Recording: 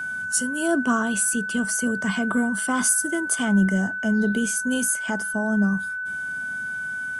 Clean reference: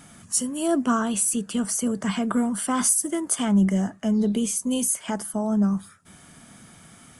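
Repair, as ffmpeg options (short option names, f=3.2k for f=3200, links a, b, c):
-af "bandreject=f=1.5k:w=30"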